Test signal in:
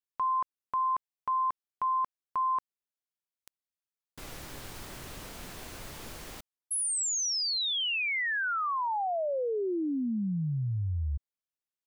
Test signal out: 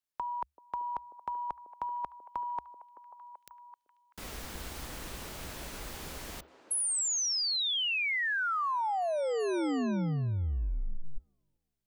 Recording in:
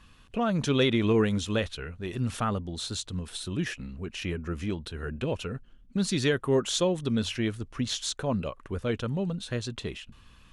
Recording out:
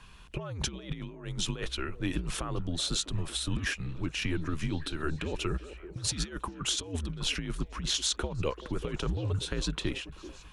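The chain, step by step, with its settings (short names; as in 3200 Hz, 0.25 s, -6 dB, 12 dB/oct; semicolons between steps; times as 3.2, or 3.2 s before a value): negative-ratio compressor -31 dBFS, ratio -0.5; delay with a stepping band-pass 0.384 s, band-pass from 500 Hz, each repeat 0.7 oct, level -10 dB; frequency shift -73 Hz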